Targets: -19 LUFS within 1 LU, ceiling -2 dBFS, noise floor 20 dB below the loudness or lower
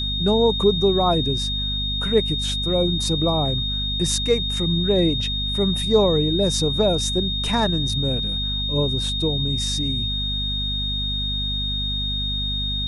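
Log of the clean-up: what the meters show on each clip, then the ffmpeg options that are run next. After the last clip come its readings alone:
hum 50 Hz; highest harmonic 250 Hz; hum level -26 dBFS; steady tone 3.7 kHz; tone level -24 dBFS; loudness -21.0 LUFS; peak level -5.5 dBFS; loudness target -19.0 LUFS
-> -af "bandreject=f=50:t=h:w=6,bandreject=f=100:t=h:w=6,bandreject=f=150:t=h:w=6,bandreject=f=200:t=h:w=6,bandreject=f=250:t=h:w=6"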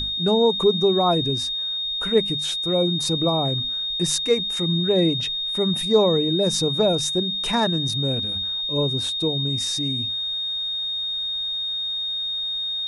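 hum not found; steady tone 3.7 kHz; tone level -24 dBFS
-> -af "bandreject=f=3700:w=30"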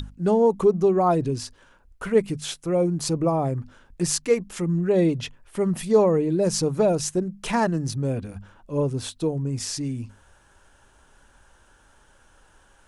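steady tone not found; loudness -23.5 LUFS; peak level -7.0 dBFS; loudness target -19.0 LUFS
-> -af "volume=1.68"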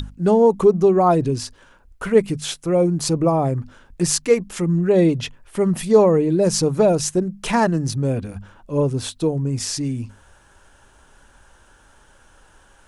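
loudness -19.0 LUFS; peak level -2.5 dBFS; noise floor -53 dBFS

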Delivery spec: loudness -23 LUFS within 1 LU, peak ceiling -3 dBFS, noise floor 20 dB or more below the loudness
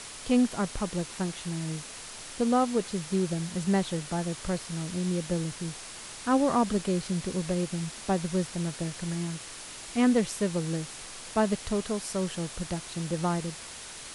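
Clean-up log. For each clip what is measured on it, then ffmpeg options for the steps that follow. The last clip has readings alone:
noise floor -43 dBFS; noise floor target -50 dBFS; loudness -30.0 LUFS; peak level -13.0 dBFS; loudness target -23.0 LUFS
-> -af "afftdn=nr=7:nf=-43"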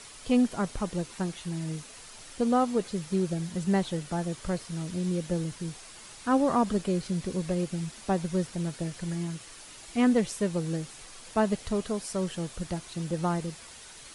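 noise floor -48 dBFS; noise floor target -50 dBFS
-> -af "afftdn=nr=6:nf=-48"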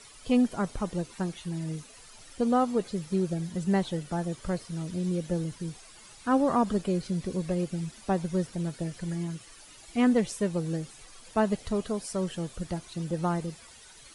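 noise floor -51 dBFS; loudness -30.0 LUFS; peak level -13.5 dBFS; loudness target -23.0 LUFS
-> -af "volume=2.24"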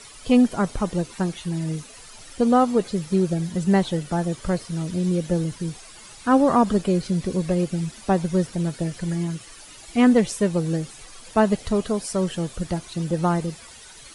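loudness -23.0 LUFS; peak level -6.5 dBFS; noise floor -44 dBFS

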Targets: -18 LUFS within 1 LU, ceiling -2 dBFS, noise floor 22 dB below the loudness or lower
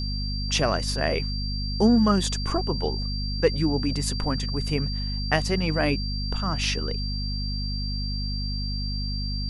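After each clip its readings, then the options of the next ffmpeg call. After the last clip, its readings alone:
hum 50 Hz; highest harmonic 250 Hz; hum level -27 dBFS; steady tone 4.7 kHz; tone level -33 dBFS; loudness -26.0 LUFS; peak level -6.5 dBFS; loudness target -18.0 LUFS
-> -af "bandreject=f=50:t=h:w=6,bandreject=f=100:t=h:w=6,bandreject=f=150:t=h:w=6,bandreject=f=200:t=h:w=6,bandreject=f=250:t=h:w=6"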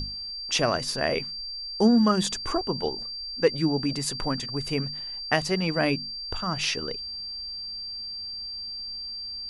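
hum not found; steady tone 4.7 kHz; tone level -33 dBFS
-> -af "bandreject=f=4700:w=30"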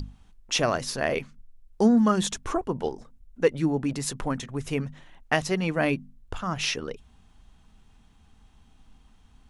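steady tone not found; loudness -26.5 LUFS; peak level -7.0 dBFS; loudness target -18.0 LUFS
-> -af "volume=2.66,alimiter=limit=0.794:level=0:latency=1"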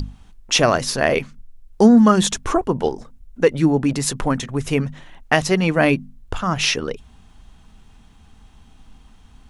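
loudness -18.5 LUFS; peak level -2.0 dBFS; noise floor -50 dBFS

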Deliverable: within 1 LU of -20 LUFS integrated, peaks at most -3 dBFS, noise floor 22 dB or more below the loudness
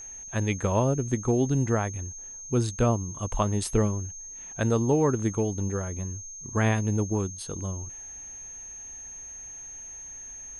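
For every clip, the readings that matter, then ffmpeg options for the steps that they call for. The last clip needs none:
steady tone 6.4 kHz; tone level -39 dBFS; loudness -27.5 LUFS; peak level -11.0 dBFS; loudness target -20.0 LUFS
-> -af "bandreject=f=6400:w=30"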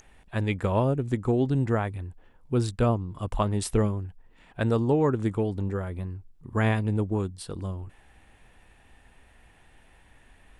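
steady tone not found; loudness -27.5 LUFS; peak level -11.0 dBFS; loudness target -20.0 LUFS
-> -af "volume=2.37"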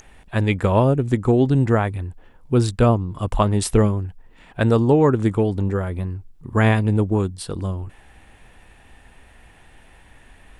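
loudness -20.0 LUFS; peak level -3.5 dBFS; noise floor -50 dBFS

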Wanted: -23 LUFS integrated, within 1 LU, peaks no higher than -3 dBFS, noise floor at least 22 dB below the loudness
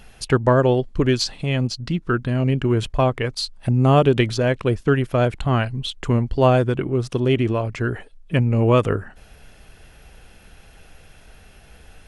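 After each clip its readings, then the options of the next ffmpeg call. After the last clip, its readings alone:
loudness -20.5 LUFS; peak level -4.0 dBFS; loudness target -23.0 LUFS
-> -af "volume=0.75"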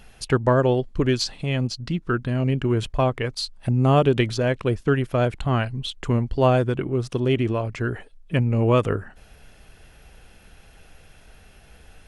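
loudness -23.0 LUFS; peak level -6.5 dBFS; noise floor -51 dBFS

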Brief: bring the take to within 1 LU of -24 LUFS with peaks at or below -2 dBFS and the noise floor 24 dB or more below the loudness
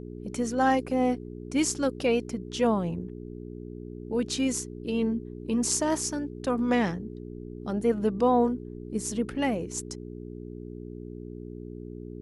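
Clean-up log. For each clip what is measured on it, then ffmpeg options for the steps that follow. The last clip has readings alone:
hum 60 Hz; highest harmonic 420 Hz; hum level -37 dBFS; loudness -28.0 LUFS; peak level -10.0 dBFS; loudness target -24.0 LUFS
-> -af "bandreject=f=60:t=h:w=4,bandreject=f=120:t=h:w=4,bandreject=f=180:t=h:w=4,bandreject=f=240:t=h:w=4,bandreject=f=300:t=h:w=4,bandreject=f=360:t=h:w=4,bandreject=f=420:t=h:w=4"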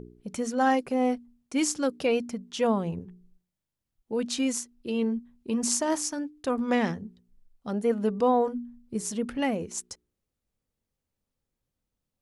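hum not found; loudness -28.5 LUFS; peak level -10.0 dBFS; loudness target -24.0 LUFS
-> -af "volume=1.68"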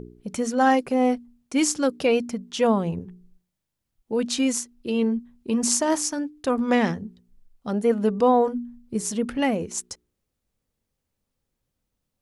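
loudness -24.0 LUFS; peak level -5.5 dBFS; noise floor -81 dBFS

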